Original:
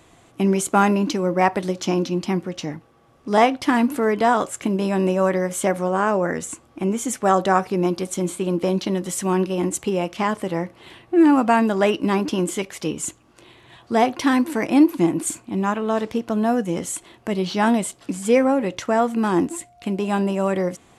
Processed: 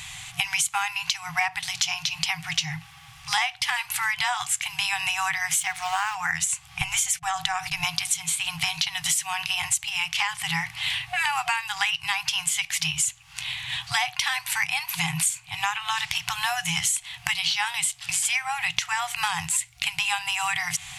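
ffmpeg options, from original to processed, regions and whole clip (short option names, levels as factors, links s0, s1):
-filter_complex "[0:a]asettb=1/sr,asplit=3[s0][s1][s2];[s0]atrim=end=5.604[s3];[s1]atrim=start=5.6:end=6.15,asetpts=PTS-STARTPTS,afade=t=in:d=0.004:c=qsin,afade=t=out:st=0.546:d=0.004:c=qsin,lowpass=9000,aeval=exprs='sgn(val(0))*max(abs(val(0))-0.0075,0)':c=same[s4];[s2]atrim=start=6.146[s5];[s3][s4]acrossfade=d=0.004:c1=hsin:c2=qsin[s6];[s6][s5]acrossfade=d=0.004:c1=qsin:c2=hsin,asettb=1/sr,asplit=3[s7][s8][s9];[s7]atrim=end=6.814[s10];[s8]atrim=start=6.81:end=7.84,asetpts=PTS-STARTPTS,afade=t=in:d=0.004:c=qsin,afade=t=out:st=1.026:d=0.004:c=qsin,agate=range=0.0282:threshold=0.0112:ratio=16:release=100:detection=peak,acompressor=threshold=0.112:ratio=2.5:attack=3.2:release=140:knee=1:detection=peak,lowshelf=f=120:g=9.5[s11];[s9]atrim=start=7.836[s12];[s10][s11]acrossfade=d=0.004:c1=hsin:c2=qsin[s13];[s13][s12]acrossfade=d=0.004:c1=qsin:c2=hsin,afftfilt=real='re*(1-between(b*sr/4096,170,720))':imag='im*(1-between(b*sr/4096,170,720))':win_size=4096:overlap=0.75,highshelf=f=1700:t=q:w=1.5:g=10,acompressor=threshold=0.0282:ratio=12,volume=2.82"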